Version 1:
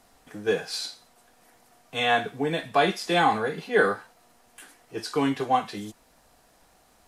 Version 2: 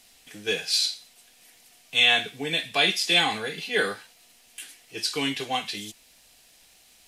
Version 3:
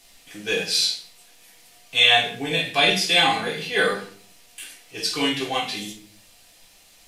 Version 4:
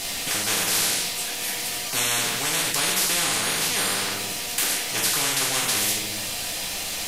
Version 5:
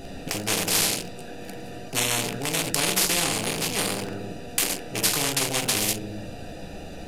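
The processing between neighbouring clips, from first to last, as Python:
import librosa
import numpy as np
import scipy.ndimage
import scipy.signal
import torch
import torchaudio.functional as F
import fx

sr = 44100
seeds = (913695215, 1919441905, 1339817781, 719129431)

y1 = fx.high_shelf_res(x, sr, hz=1800.0, db=12.5, q=1.5)
y1 = F.gain(torch.from_numpy(y1), -5.0).numpy()
y2 = fx.room_shoebox(y1, sr, seeds[0], volume_m3=54.0, walls='mixed', distance_m=0.79)
y3 = fx.spectral_comp(y2, sr, ratio=10.0)
y3 = F.gain(torch.from_numpy(y3), -3.5).numpy()
y4 = fx.wiener(y3, sr, points=41)
y4 = F.gain(torch.from_numpy(y4), 5.0).numpy()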